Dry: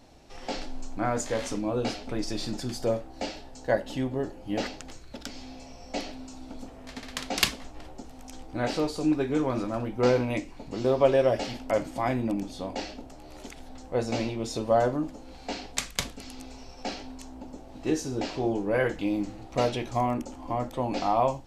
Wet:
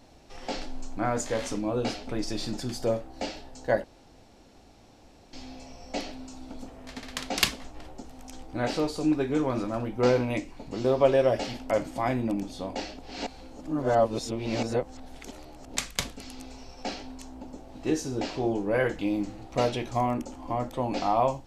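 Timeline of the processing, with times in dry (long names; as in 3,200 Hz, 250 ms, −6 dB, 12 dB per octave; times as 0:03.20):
0:03.84–0:05.33: fill with room tone
0:12.99–0:15.76: reverse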